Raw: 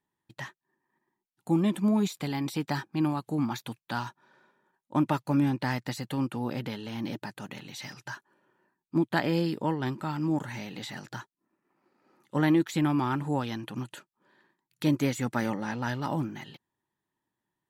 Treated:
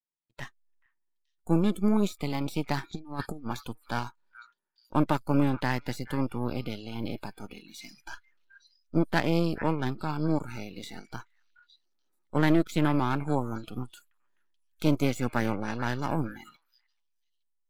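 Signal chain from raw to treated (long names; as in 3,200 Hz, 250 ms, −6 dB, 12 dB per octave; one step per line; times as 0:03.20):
gain on one half-wave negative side −12 dB
0:13.33–0:13.59: time-frequency box erased 1,100–6,100 Hz
on a send: echo through a band-pass that steps 431 ms, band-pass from 1,700 Hz, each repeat 1.4 octaves, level −8.5 dB
0:02.83–0:03.47: on the sum: compressor whose output falls as the input rises −36 dBFS, ratio −0.5
in parallel at −5.5 dB: slack as between gear wheels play −31.5 dBFS
on the sum: noise reduction from a noise print of the clip's start 19 dB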